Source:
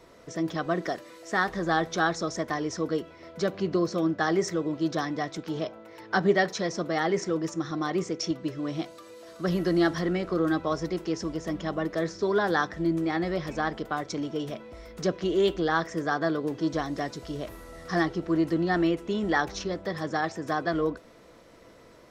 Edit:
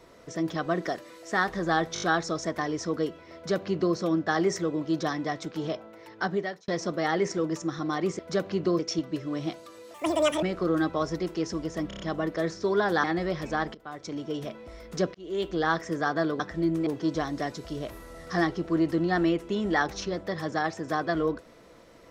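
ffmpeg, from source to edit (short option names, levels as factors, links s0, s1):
-filter_complex "[0:a]asplit=19[s0][s1][s2][s3][s4][s5][s6][s7][s8][s9][s10][s11][s12][s13][s14][s15][s16][s17][s18];[s0]atrim=end=1.962[s19];[s1]atrim=start=1.938:end=1.962[s20];[s2]atrim=start=1.938:end=1.962[s21];[s3]atrim=start=1.938:end=1.962[s22];[s4]atrim=start=1.938:end=6.6,asetpts=PTS-STARTPTS,afade=t=out:st=3.662:d=1:c=qsin[s23];[s5]atrim=start=6.6:end=8.112,asetpts=PTS-STARTPTS,afade=t=in:d=0.004:c=hsin[s24];[s6]atrim=start=3.268:end=3.872[s25];[s7]atrim=start=8.108:end=9.264[s26];[s8]atrim=start=9.26:end=10.13,asetpts=PTS-STARTPTS,asetrate=78939,aresample=44100,atrim=end_sample=21434,asetpts=PTS-STARTPTS[s27];[s9]atrim=start=10.126:end=11.612[s28];[s10]atrim=start=11.578:end=11.612[s29];[s11]atrim=start=11.578:end=11.612[s30];[s12]atrim=start=11.578:end=11.612[s31];[s13]atrim=start=11.578:end=12.622[s32];[s14]atrim=start=13.088:end=13.8,asetpts=PTS-STARTPTS,afade=t=out:st=0.708:d=0.004:c=hsin:silence=0.0891251[s33];[s15]atrim=start=13.8:end=15.2,asetpts=PTS-STARTPTS,afade=t=in:d=0.89:c=qsin:silence=0.0891251,afade=t=out:st=1.396:d=0.004:c=hsin[s34];[s16]atrim=start=15.2:end=16.452,asetpts=PTS-STARTPTS,afade=t=in:d=0.5[s35];[s17]atrim=start=12.618:end=13.092[s36];[s18]atrim=start=16.448[s37];[s19][s20]acrossfade=d=0.004:c1=hsin:c2=hsin[s38];[s38][s21]acrossfade=d=0.004:c1=hsin:c2=hsin[s39];[s39][s22]acrossfade=d=0.004:c1=hsin:c2=hsin[s40];[s23][s24]concat=n=2:v=0:a=1[s41];[s40][s41]acrossfade=d=0.004:c1=hsin:c2=hsin[s42];[s42][s25]acrossfade=d=0.004:c1=hsin:c2=hsin[s43];[s43][s26]acrossfade=d=0.004:c1=hsin:c2=hsin[s44];[s44][s27]acrossfade=d=0.004:c1=hsin:c2=hsin[s45];[s45][s28]acrossfade=d=0.004:c1=hsin:c2=hsin[s46];[s46][s29]acrossfade=d=0.004:c1=hsin:c2=hsin[s47];[s47][s30]acrossfade=d=0.004:c1=hsin:c2=hsin[s48];[s48][s31]acrossfade=d=0.004:c1=hsin:c2=hsin[s49];[s49][s32]acrossfade=d=0.004:c1=hsin:c2=hsin[s50];[s33][s34][s35]concat=n=3:v=0:a=1[s51];[s50][s51]acrossfade=d=0.004:c1=hsin:c2=hsin[s52];[s52][s36]acrossfade=d=0.004:c1=hsin:c2=hsin[s53];[s53][s37]acrossfade=d=0.004:c1=hsin:c2=hsin"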